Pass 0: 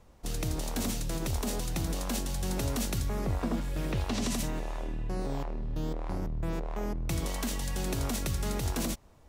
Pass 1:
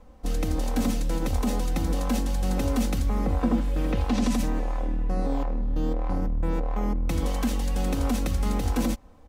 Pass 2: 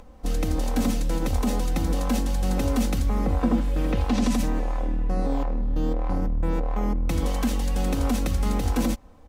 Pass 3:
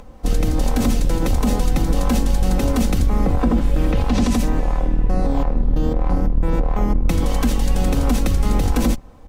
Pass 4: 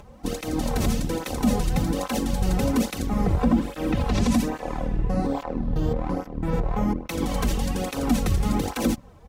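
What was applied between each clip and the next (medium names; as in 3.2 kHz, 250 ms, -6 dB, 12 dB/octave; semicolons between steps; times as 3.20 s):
treble shelf 2.4 kHz -9.5 dB; comb 3.9 ms, depth 70%; trim +5 dB
upward compressor, threshold -44 dBFS; trim +1.5 dB
octave divider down 2 oct, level -1 dB; peak limiter -14.5 dBFS, peak gain reduction 5 dB; trim +6 dB
cancelling through-zero flanger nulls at 1.2 Hz, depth 4.2 ms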